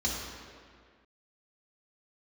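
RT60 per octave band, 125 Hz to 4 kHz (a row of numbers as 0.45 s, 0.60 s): 1.7 s, 2.0 s, 1.9 s, 2.0 s, 1.9 s, 1.5 s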